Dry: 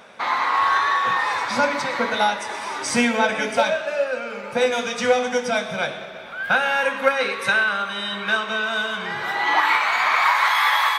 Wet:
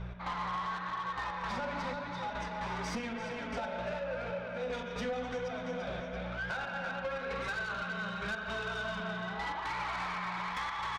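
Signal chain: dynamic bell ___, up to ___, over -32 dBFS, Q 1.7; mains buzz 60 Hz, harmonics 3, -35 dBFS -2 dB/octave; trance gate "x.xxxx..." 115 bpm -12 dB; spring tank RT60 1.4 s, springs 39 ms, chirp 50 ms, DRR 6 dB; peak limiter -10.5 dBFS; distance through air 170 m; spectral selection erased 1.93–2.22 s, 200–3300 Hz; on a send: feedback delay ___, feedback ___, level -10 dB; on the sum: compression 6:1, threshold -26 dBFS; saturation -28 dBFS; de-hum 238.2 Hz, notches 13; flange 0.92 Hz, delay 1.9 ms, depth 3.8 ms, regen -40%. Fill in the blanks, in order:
2.1 kHz, -4 dB, 340 ms, 45%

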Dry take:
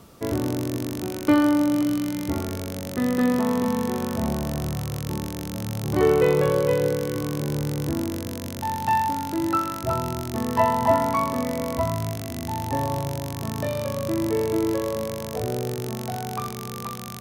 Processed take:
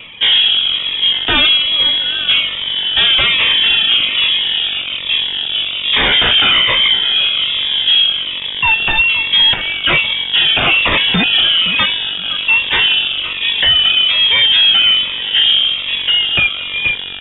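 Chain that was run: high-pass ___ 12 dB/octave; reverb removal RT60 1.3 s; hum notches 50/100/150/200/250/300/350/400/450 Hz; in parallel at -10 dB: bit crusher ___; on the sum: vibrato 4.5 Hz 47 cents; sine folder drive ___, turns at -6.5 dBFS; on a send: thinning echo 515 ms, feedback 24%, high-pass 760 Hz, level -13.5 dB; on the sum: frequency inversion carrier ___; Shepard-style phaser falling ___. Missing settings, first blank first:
320 Hz, 7-bit, 19 dB, 3.6 kHz, 1.2 Hz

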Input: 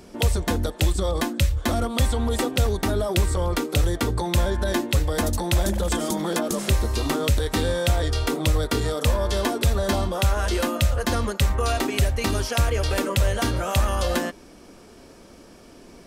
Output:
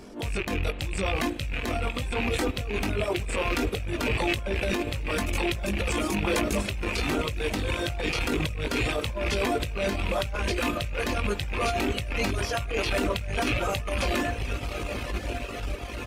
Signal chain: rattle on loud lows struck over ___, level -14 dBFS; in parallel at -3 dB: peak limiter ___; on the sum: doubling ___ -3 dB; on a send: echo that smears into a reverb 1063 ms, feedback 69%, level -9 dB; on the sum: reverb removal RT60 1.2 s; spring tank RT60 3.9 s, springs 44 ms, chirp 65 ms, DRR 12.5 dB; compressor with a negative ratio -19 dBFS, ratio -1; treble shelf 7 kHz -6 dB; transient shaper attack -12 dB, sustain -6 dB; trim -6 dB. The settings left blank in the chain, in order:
-29 dBFS, -14.5 dBFS, 20 ms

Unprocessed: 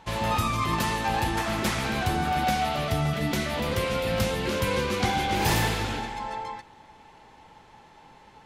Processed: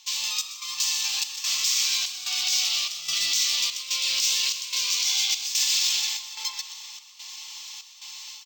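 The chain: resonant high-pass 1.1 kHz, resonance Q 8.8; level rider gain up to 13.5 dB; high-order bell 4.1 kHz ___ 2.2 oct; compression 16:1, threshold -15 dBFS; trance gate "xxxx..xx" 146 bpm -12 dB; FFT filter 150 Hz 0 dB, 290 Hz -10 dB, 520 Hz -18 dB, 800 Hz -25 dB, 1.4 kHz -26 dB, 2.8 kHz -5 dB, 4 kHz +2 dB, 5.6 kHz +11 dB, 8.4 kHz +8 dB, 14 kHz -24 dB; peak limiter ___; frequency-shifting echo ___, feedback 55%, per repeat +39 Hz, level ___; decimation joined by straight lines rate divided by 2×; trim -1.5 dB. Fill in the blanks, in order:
+10.5 dB, -9.5 dBFS, 126 ms, -13 dB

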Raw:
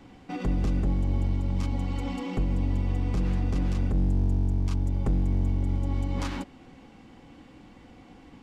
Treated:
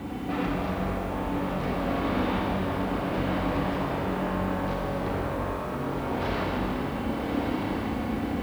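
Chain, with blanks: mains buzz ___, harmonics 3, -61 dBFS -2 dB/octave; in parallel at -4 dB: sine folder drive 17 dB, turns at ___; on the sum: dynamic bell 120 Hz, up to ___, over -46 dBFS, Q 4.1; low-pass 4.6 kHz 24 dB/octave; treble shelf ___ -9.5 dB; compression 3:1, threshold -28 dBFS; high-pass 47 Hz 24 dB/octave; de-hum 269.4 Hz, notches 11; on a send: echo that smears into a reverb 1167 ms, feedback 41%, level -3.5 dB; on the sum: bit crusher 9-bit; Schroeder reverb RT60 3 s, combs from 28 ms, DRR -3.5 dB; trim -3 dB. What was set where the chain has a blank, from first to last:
100 Hz, -17.5 dBFS, -4 dB, 2.9 kHz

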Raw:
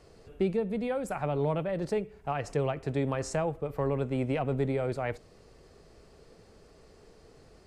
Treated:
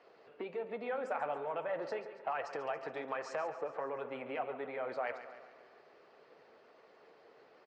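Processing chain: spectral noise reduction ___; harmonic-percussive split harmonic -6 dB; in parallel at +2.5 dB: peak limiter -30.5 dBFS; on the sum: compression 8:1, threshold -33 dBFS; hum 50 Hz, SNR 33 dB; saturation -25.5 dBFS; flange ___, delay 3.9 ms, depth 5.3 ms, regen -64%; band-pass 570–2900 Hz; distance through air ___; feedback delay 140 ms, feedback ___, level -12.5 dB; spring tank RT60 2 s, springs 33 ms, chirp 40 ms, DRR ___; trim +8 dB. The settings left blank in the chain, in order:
7 dB, 1.3 Hz, 76 m, 54%, 14.5 dB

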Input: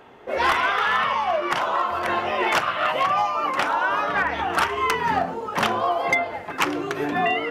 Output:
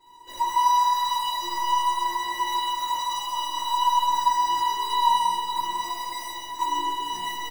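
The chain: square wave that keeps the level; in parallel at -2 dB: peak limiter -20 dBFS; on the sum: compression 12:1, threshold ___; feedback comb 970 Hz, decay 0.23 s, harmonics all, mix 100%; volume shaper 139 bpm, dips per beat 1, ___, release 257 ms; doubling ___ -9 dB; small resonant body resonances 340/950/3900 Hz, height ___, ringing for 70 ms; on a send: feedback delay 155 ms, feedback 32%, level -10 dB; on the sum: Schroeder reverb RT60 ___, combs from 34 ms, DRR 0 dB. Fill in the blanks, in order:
-16 dBFS, -4 dB, 17 ms, 16 dB, 1.8 s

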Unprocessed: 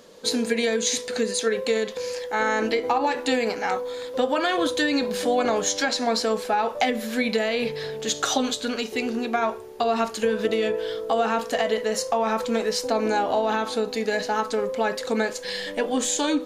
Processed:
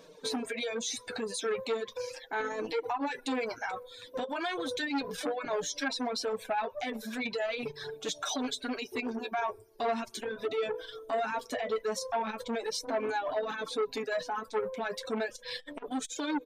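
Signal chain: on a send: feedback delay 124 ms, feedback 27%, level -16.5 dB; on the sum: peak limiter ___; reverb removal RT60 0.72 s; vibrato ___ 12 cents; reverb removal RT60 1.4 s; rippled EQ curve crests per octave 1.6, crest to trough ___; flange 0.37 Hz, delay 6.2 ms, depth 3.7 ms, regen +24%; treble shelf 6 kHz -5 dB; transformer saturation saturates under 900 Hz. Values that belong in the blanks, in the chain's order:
-18 dBFS, 5.2 Hz, 6 dB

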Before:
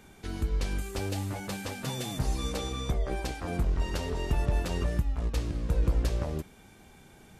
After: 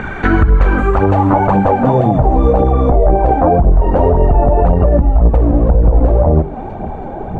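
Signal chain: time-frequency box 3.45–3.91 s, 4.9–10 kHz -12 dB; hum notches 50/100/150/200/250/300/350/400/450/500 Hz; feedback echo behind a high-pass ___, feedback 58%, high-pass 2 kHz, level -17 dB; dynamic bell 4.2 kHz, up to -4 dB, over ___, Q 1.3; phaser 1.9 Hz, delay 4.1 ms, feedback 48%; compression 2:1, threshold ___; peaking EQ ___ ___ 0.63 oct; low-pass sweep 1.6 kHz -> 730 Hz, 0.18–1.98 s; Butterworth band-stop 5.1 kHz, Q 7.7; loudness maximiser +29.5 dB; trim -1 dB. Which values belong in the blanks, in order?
323 ms, -56 dBFS, -39 dBFS, 7.6 kHz, +3.5 dB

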